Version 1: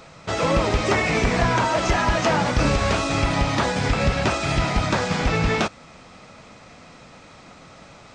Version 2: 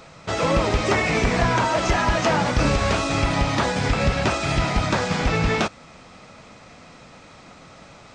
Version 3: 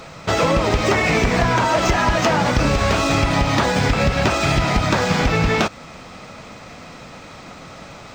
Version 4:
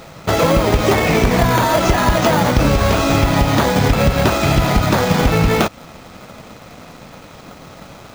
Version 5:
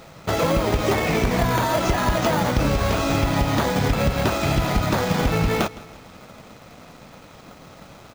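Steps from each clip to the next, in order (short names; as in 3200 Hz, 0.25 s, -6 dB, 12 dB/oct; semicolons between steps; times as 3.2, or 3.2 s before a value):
nothing audible
median filter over 3 samples; compressor, threshold -21 dBFS, peak gain reduction 7 dB; gain +7.5 dB
in parallel at -3.5 dB: sample-rate reducer 2700 Hz, jitter 0%; on the sum: crossover distortion -43.5 dBFS
feedback echo 0.162 s, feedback 47%, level -19.5 dB; gain -6.5 dB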